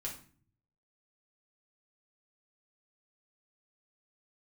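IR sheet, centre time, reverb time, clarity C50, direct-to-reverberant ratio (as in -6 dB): 22 ms, 0.45 s, 7.5 dB, -3.0 dB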